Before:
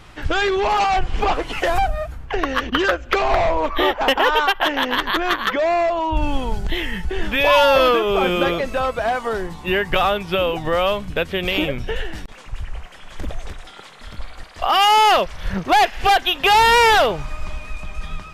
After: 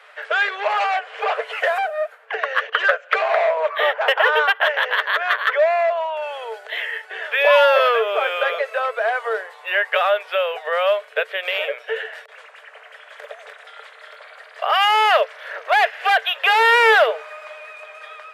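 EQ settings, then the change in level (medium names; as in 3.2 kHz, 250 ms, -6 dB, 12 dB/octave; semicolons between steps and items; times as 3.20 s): rippled Chebyshev high-pass 430 Hz, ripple 9 dB; peaking EQ 5.9 kHz -6.5 dB 0.82 oct; treble shelf 9 kHz -6 dB; +5.0 dB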